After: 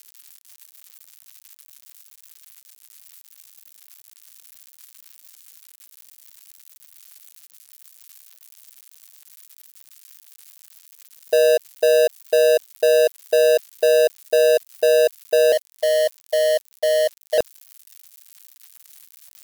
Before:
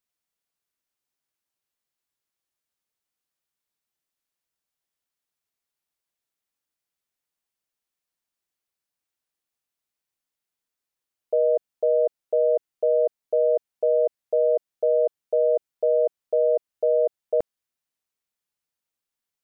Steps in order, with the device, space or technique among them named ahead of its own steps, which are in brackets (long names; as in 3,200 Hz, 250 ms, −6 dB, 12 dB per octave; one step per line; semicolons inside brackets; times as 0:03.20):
0:15.52–0:17.38: elliptic high-pass filter 560 Hz, stop band 40 dB
budget class-D amplifier (gap after every zero crossing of 0.19 ms; spike at every zero crossing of −29 dBFS)
level +5.5 dB